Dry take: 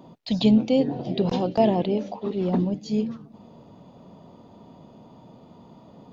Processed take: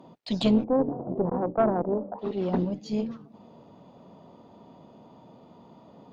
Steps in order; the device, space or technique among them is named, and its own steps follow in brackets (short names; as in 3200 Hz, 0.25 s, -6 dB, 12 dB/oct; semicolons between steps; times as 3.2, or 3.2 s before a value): 0.64–2.19 Chebyshev low-pass 1100 Hz, order 4; tube preamp driven hard (tube stage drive 14 dB, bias 0.75; low shelf 180 Hz -8 dB; high shelf 3900 Hz -6 dB); gain +4 dB